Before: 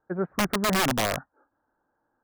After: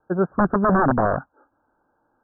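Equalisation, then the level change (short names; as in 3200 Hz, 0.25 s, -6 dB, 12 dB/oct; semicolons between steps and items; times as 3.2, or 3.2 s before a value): steep low-pass 1600 Hz 96 dB/oct; +7.5 dB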